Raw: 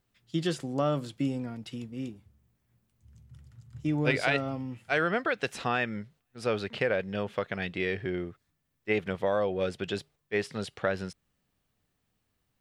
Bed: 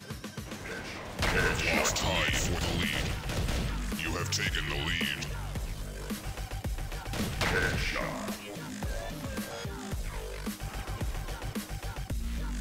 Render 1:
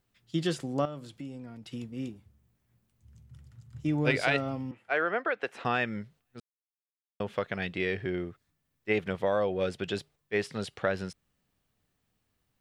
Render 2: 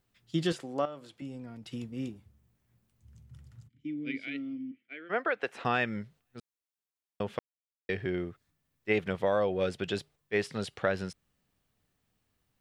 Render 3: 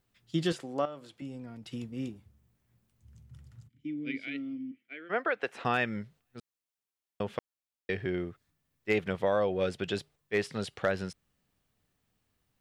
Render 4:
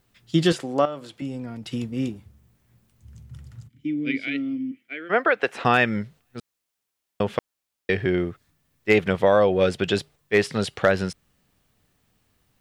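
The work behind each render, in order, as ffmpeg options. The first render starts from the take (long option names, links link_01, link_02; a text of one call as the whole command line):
ffmpeg -i in.wav -filter_complex "[0:a]asettb=1/sr,asplit=3[link_01][link_02][link_03];[link_01]atrim=end=0.854[link_04];[link_02]atrim=start=0.85:end=1.73,asetpts=PTS-STARTPTS,afade=type=in:duration=0.004:curve=qsin,afade=type=out:start_time=0.876:duration=0.004:curve=qsin,acompressor=threshold=-46dB:ratio=2:attack=3.2:release=140:knee=1:detection=peak[link_05];[link_03]atrim=start=1.726[link_06];[link_04][link_05]acrossfade=duration=0.004:curve1=hsin:curve2=qsin[link_07];[link_07][link_06]acrossfade=duration=0.004:curve1=qsin:curve2=hsin,asettb=1/sr,asplit=3[link_08][link_09][link_10];[link_08]atrim=end=4.714[link_11];[link_09]atrim=start=4.71:end=5.65,asetpts=PTS-STARTPTS,afade=type=in:duration=0.004:curve=qsin,afade=type=out:start_time=0.936:duration=0.004:curve=qsin,acrossover=split=300 2600:gain=0.141 1 0.178[link_12][link_13][link_14];[link_12][link_13][link_14]amix=inputs=3:normalize=0[link_15];[link_10]atrim=start=5.646[link_16];[link_11][link_15]acrossfade=duration=0.004:curve1=hsin:curve2=qsin[link_17];[link_17][link_16]acrossfade=duration=0.004:curve1=qsin:curve2=hsin,asplit=3[link_18][link_19][link_20];[link_18]atrim=end=6.4,asetpts=PTS-STARTPTS,afade=type=out:start_time=6.396:duration=0.004:curve=hsin[link_21];[link_19]atrim=start=6.4:end=7.2,asetpts=PTS-STARTPTS,volume=0[link_22];[link_20]atrim=start=7.2,asetpts=PTS-STARTPTS,afade=type=in:duration=0.004:curve=hsin[link_23];[link_21][link_22][link_23]concat=n=3:v=0:a=1" out.wav
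ffmpeg -i in.wav -filter_complex "[0:a]asettb=1/sr,asplit=3[link_01][link_02][link_03];[link_01]atrim=end=0.524[link_04];[link_02]atrim=start=0.52:end=1.22,asetpts=PTS-STARTPTS,afade=type=in:duration=0.004:curve=qsin,afade=type=out:start_time=0.696:duration=0.004:curve=qsin,bass=frequency=250:gain=-13,treble=frequency=4000:gain=-5[link_05];[link_03]atrim=start=1.216[link_06];[link_04][link_05]acrossfade=duration=0.004:curve1=hsin:curve2=qsin[link_07];[link_07][link_06]acrossfade=duration=0.004:curve1=qsin:curve2=hsin,asplit=3[link_08][link_09][link_10];[link_08]afade=type=out:start_time=3.67:duration=0.02[link_11];[link_09]asplit=3[link_12][link_13][link_14];[link_12]bandpass=frequency=270:width_type=q:width=8,volume=0dB[link_15];[link_13]bandpass=frequency=2290:width_type=q:width=8,volume=-6dB[link_16];[link_14]bandpass=frequency=3010:width_type=q:width=8,volume=-9dB[link_17];[link_15][link_16][link_17]amix=inputs=3:normalize=0,afade=type=in:start_time=3.67:duration=0.02,afade=type=out:start_time=5.09:duration=0.02[link_18];[link_10]afade=type=in:start_time=5.09:duration=0.02[link_19];[link_11][link_18][link_19]amix=inputs=3:normalize=0,asplit=3[link_20][link_21][link_22];[link_20]atrim=end=7.39,asetpts=PTS-STARTPTS,afade=type=out:start_time=7.386:duration=0.004:curve=hsin[link_23];[link_21]atrim=start=7.39:end=7.89,asetpts=PTS-STARTPTS,volume=0[link_24];[link_22]atrim=start=7.89,asetpts=PTS-STARTPTS,afade=type=in:duration=0.004:curve=hsin[link_25];[link_23][link_24][link_25]concat=n=3:v=0:a=1" out.wav
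ffmpeg -i in.wav -af "asoftclip=type=hard:threshold=-16.5dB" out.wav
ffmpeg -i in.wav -af "volume=10dB" out.wav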